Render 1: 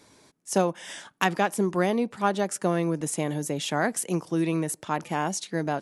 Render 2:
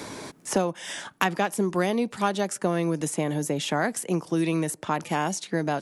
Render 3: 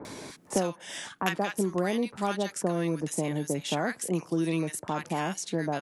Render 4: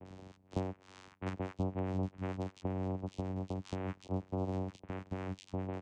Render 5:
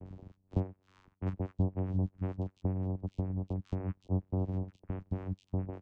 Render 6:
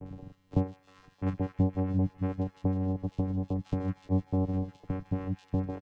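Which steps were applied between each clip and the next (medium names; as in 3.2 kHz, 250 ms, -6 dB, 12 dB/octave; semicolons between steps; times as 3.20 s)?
three bands compressed up and down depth 70%
bands offset in time lows, highs 50 ms, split 1.2 kHz; trim -3 dB
vocoder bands 4, saw 93.9 Hz; trim -8 dB
reverb removal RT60 0.89 s; tilt EQ -3.5 dB/octave; trim -4 dB
comb 6.9 ms, depth 83%; feedback echo behind a high-pass 155 ms, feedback 79%, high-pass 1.9 kHz, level -7 dB; trim +4 dB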